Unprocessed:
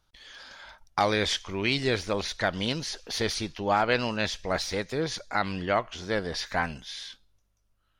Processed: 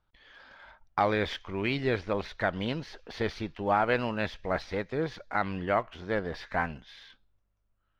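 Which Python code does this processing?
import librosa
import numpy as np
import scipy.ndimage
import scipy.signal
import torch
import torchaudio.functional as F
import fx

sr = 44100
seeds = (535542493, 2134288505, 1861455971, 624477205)

p1 = scipy.signal.sosfilt(scipy.signal.butter(2, 2300.0, 'lowpass', fs=sr, output='sos'), x)
p2 = np.sign(p1) * np.maximum(np.abs(p1) - 10.0 ** (-44.0 / 20.0), 0.0)
p3 = p1 + F.gain(torch.from_numpy(p2), -9.5).numpy()
y = F.gain(torch.from_numpy(p3), -3.5).numpy()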